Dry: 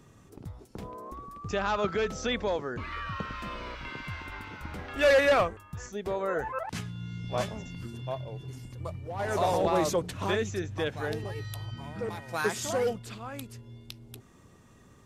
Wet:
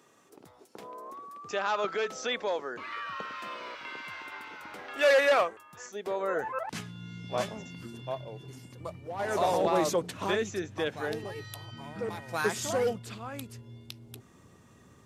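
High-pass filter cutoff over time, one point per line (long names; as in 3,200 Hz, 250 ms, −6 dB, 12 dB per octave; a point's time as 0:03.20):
0:05.86 400 Hz
0:06.58 170 Hz
0:11.88 170 Hz
0:12.44 70 Hz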